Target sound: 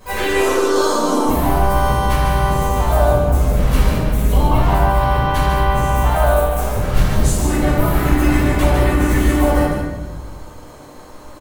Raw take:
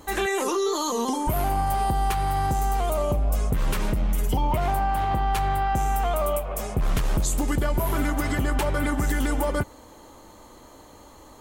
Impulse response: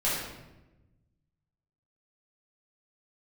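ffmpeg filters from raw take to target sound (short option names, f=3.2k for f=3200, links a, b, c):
-filter_complex "[0:a]asplit=4[a][b][c][d];[b]asetrate=33038,aresample=44100,atempo=1.33484,volume=-12dB[e];[c]asetrate=55563,aresample=44100,atempo=0.793701,volume=-3dB[f];[d]asetrate=58866,aresample=44100,atempo=0.749154,volume=-14dB[g];[a][e][f][g]amix=inputs=4:normalize=0,aecho=1:1:148:0.501[h];[1:a]atrim=start_sample=2205[i];[h][i]afir=irnorm=-1:irlink=0,volume=-5.5dB"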